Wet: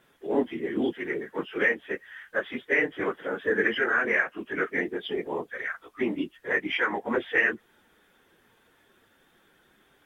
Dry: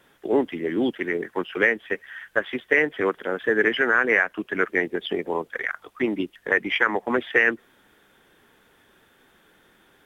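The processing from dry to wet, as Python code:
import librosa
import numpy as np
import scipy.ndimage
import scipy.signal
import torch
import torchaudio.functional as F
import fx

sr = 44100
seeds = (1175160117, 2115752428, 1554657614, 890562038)

y = fx.phase_scramble(x, sr, seeds[0], window_ms=50)
y = y * 10.0 ** (-4.5 / 20.0)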